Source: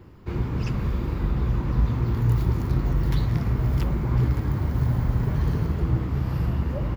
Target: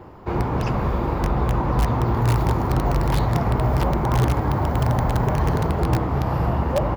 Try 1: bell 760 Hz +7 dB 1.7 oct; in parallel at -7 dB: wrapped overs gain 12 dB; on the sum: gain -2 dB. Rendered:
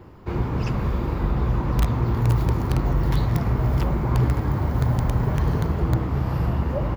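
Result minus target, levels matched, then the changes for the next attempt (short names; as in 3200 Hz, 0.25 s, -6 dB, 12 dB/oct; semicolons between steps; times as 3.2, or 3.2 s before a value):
1000 Hz band -6.0 dB
change: bell 760 Hz +16 dB 1.7 oct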